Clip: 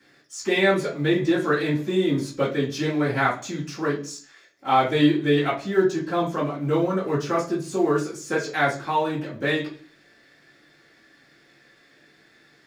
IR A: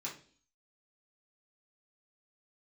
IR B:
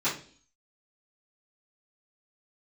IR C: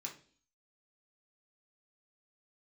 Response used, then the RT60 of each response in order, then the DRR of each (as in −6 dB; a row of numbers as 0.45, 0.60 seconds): B; 0.45, 0.45, 0.45 seconds; −6.0, −14.5, −1.5 decibels